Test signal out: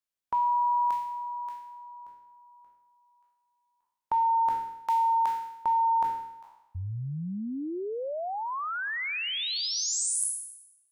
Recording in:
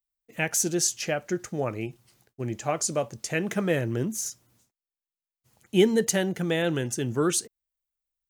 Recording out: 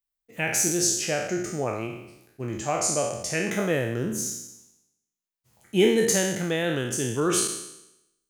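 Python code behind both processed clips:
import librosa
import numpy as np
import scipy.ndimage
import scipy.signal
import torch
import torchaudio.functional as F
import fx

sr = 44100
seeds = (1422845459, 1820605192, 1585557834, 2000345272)

y = fx.spec_trails(x, sr, decay_s=0.86)
y = y * 10.0 ** (-1.5 / 20.0)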